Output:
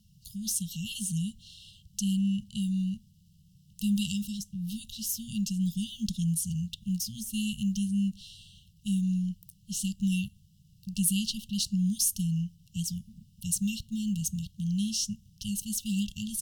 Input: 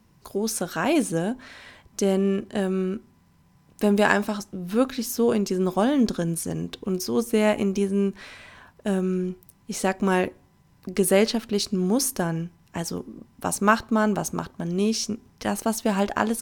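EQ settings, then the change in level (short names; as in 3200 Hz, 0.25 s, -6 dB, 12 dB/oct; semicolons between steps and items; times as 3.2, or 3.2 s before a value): dynamic EQ 4500 Hz, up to -4 dB, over -46 dBFS, Q 2; brick-wall FIR band-stop 210–2700 Hz; 0.0 dB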